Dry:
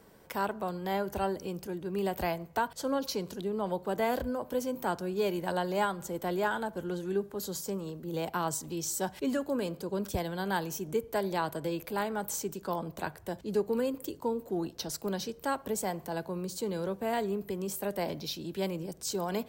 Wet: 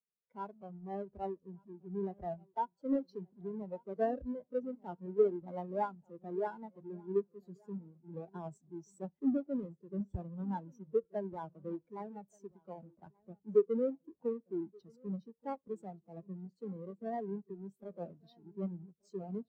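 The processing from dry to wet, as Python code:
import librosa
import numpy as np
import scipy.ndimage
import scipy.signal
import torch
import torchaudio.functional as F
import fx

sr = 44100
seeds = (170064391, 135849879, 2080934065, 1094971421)

y = fx.halfwave_hold(x, sr)
y = fx.echo_feedback(y, sr, ms=1180, feedback_pct=32, wet_db=-12.5)
y = fx.spectral_expand(y, sr, expansion=2.5)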